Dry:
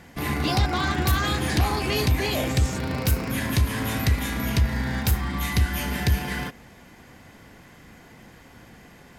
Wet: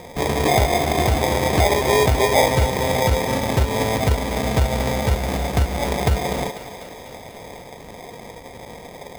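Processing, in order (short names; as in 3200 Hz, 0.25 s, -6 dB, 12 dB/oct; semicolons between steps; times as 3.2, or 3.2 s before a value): median filter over 41 samples; band shelf 690 Hz +15.5 dB; in parallel at +1 dB: compressor, threshold -30 dBFS, peak gain reduction 15.5 dB; on the sum: sample-and-hold 31×; thinning echo 0.247 s, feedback 69%, high-pass 330 Hz, level -13 dB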